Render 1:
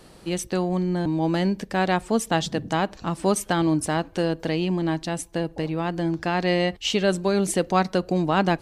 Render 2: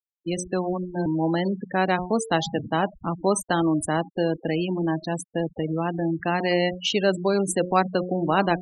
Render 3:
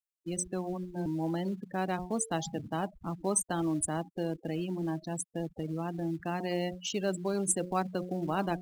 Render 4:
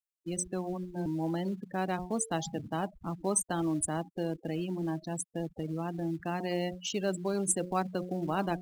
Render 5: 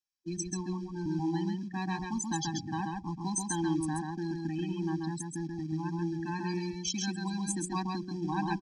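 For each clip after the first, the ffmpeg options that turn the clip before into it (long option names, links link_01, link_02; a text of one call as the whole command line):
ffmpeg -i in.wav -filter_complex "[0:a]bandreject=frequency=90.18:width_type=h:width=4,bandreject=frequency=180.36:width_type=h:width=4,bandreject=frequency=270.54:width_type=h:width=4,bandreject=frequency=360.72:width_type=h:width=4,bandreject=frequency=450.9:width_type=h:width=4,bandreject=frequency=541.08:width_type=h:width=4,bandreject=frequency=631.26:width_type=h:width=4,bandreject=frequency=721.44:width_type=h:width=4,bandreject=frequency=811.62:width_type=h:width=4,bandreject=frequency=901.8:width_type=h:width=4,bandreject=frequency=991.98:width_type=h:width=4,bandreject=frequency=1082.16:width_type=h:width=4,bandreject=frequency=1172.34:width_type=h:width=4,bandreject=frequency=1262.52:width_type=h:width=4,bandreject=frequency=1352.7:width_type=h:width=4,bandreject=frequency=1442.88:width_type=h:width=4,bandreject=frequency=1533.06:width_type=h:width=4,afftfilt=real='re*gte(hypot(re,im),0.0501)':imag='im*gte(hypot(re,im),0.0501)':win_size=1024:overlap=0.75,acrossover=split=260|5100[link_01][link_02][link_03];[link_01]alimiter=level_in=3dB:limit=-24dB:level=0:latency=1:release=30,volume=-3dB[link_04];[link_04][link_02][link_03]amix=inputs=3:normalize=0,volume=1dB" out.wav
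ffmpeg -i in.wav -filter_complex "[0:a]equalizer=frequency=125:width_type=o:width=1:gain=-3,equalizer=frequency=250:width_type=o:width=1:gain=-3,equalizer=frequency=500:width_type=o:width=1:gain=-6,equalizer=frequency=1000:width_type=o:width=1:gain=-4,equalizer=frequency=2000:width_type=o:width=1:gain=-9,equalizer=frequency=4000:width_type=o:width=1:gain=-9,equalizer=frequency=8000:width_type=o:width=1:gain=7,asplit=2[link_01][link_02];[link_02]acrusher=bits=4:mode=log:mix=0:aa=0.000001,volume=-7.5dB[link_03];[link_01][link_03]amix=inputs=2:normalize=0,volume=-7dB" out.wav
ffmpeg -i in.wav -af anull out.wav
ffmpeg -i in.wav -af "lowpass=frequency=5500:width_type=q:width=4,aecho=1:1:134:0.668,afftfilt=real='re*eq(mod(floor(b*sr/1024/380),2),0)':imag='im*eq(mod(floor(b*sr/1024/380),2),0)':win_size=1024:overlap=0.75" out.wav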